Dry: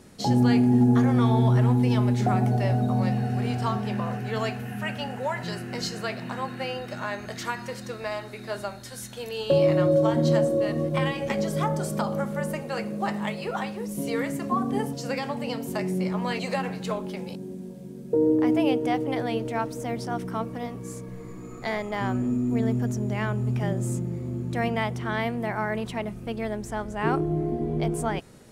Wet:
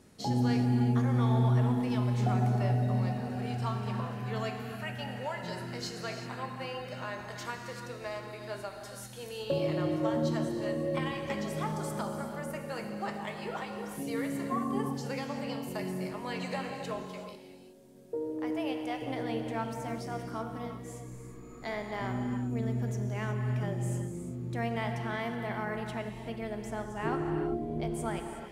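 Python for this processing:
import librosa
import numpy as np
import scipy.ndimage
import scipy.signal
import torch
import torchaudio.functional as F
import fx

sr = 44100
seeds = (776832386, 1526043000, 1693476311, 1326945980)

y = fx.peak_eq(x, sr, hz=160.0, db=-14.0, octaves=2.0, at=(17.02, 19.02))
y = fx.rev_gated(y, sr, seeds[0], gate_ms=400, shape='flat', drr_db=4.0)
y = y * librosa.db_to_amplitude(-8.0)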